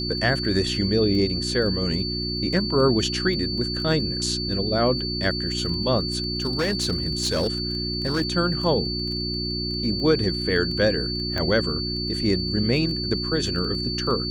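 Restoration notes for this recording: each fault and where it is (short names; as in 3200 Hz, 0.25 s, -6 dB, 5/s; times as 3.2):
crackle 10/s -30 dBFS
hum 60 Hz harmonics 6 -30 dBFS
tone 4500 Hz -28 dBFS
6.32–8.22 clipped -18.5 dBFS
11.38 pop -13 dBFS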